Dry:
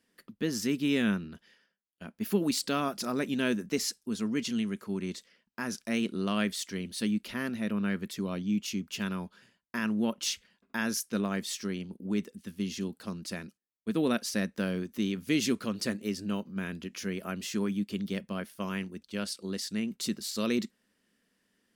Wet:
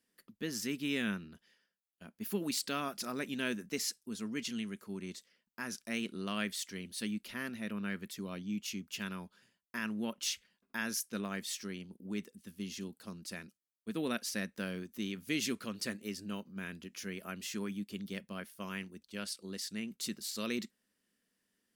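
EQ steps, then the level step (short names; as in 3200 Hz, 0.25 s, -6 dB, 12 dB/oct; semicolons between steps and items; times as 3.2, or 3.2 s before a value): dynamic EQ 2100 Hz, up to +5 dB, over -45 dBFS, Q 0.77; high shelf 6200 Hz +8 dB; -8.5 dB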